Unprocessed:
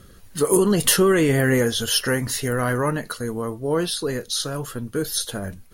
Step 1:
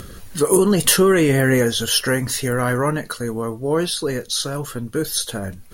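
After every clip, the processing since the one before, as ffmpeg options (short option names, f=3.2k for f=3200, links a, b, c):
-af "acompressor=mode=upward:threshold=-30dB:ratio=2.5,volume=2.5dB"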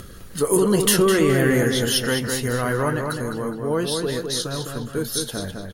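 -filter_complex "[0:a]asplit=2[a][b];[b]adelay=207,lowpass=f=3.7k:p=1,volume=-4.5dB,asplit=2[c][d];[d]adelay=207,lowpass=f=3.7k:p=1,volume=0.45,asplit=2[e][f];[f]adelay=207,lowpass=f=3.7k:p=1,volume=0.45,asplit=2[g][h];[h]adelay=207,lowpass=f=3.7k:p=1,volume=0.45,asplit=2[i][j];[j]adelay=207,lowpass=f=3.7k:p=1,volume=0.45,asplit=2[k][l];[l]adelay=207,lowpass=f=3.7k:p=1,volume=0.45[m];[a][c][e][g][i][k][m]amix=inputs=7:normalize=0,volume=-3.5dB"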